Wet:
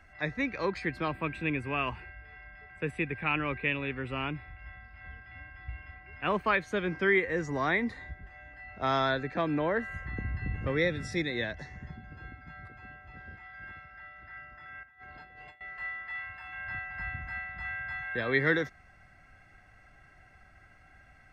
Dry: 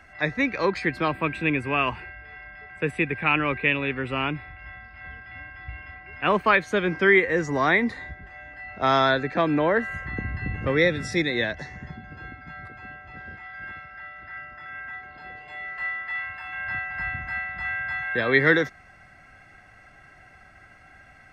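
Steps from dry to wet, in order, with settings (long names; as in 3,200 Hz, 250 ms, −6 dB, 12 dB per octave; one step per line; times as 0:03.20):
low-shelf EQ 88 Hz +9.5 dB
0:14.83–0:15.61: compressor whose output falls as the input rises −43 dBFS, ratio −0.5
level −8 dB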